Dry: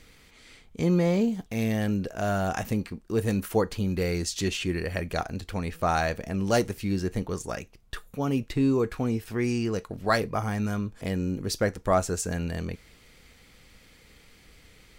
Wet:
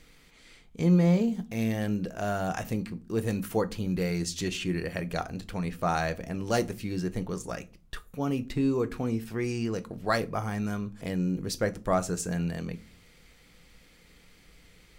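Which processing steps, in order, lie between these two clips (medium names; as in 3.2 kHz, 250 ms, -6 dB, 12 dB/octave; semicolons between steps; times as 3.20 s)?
on a send: peaking EQ 210 Hz +8.5 dB 0.86 oct + reverberation RT60 0.30 s, pre-delay 4 ms, DRR 13.5 dB; on the sum: trim -3 dB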